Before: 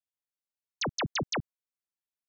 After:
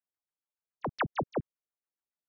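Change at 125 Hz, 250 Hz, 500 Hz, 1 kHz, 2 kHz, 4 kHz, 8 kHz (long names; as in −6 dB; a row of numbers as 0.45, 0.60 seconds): −2.5 dB, −1.0 dB, +1.5 dB, +1.5 dB, −3.5 dB, −15.5 dB, can't be measured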